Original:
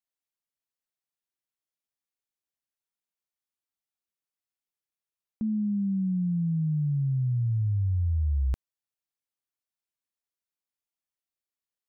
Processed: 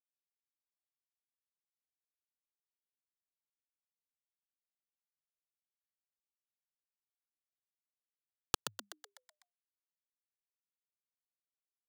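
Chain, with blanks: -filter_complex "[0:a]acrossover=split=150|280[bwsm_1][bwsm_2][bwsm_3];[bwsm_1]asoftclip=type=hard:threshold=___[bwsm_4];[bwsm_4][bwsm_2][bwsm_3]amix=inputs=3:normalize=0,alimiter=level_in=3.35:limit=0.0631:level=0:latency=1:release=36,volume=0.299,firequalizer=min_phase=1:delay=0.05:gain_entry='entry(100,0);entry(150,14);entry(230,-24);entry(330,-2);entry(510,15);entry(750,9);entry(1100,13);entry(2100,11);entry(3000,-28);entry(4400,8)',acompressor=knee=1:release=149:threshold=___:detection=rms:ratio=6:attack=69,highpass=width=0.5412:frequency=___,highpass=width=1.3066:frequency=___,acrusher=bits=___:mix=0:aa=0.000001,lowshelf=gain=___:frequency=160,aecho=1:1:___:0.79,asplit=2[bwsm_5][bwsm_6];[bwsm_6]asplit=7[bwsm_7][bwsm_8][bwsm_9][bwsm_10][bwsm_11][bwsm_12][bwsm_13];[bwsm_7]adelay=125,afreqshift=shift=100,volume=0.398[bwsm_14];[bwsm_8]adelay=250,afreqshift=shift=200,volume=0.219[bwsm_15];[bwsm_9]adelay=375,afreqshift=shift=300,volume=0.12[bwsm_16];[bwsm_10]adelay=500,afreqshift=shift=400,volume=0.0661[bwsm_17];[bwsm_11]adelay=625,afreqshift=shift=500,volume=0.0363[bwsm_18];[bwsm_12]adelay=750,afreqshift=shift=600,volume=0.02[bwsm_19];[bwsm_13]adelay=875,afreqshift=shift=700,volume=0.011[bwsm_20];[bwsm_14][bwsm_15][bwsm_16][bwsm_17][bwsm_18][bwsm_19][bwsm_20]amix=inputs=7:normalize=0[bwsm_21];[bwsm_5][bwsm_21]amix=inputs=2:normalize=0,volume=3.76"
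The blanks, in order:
0.0251, 0.02, 68, 68, 4, -6.5, 2.4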